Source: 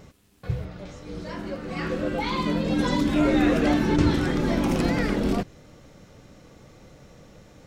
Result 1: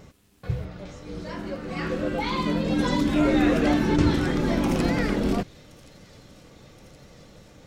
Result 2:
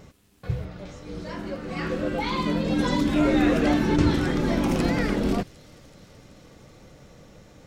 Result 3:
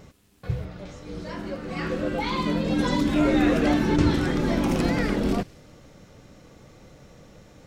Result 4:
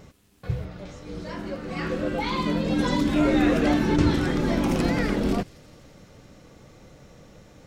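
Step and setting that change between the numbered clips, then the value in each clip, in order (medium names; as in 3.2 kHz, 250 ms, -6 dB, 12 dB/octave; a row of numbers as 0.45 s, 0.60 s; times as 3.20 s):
feedback echo behind a high-pass, time: 1073 ms, 378 ms, 70 ms, 169 ms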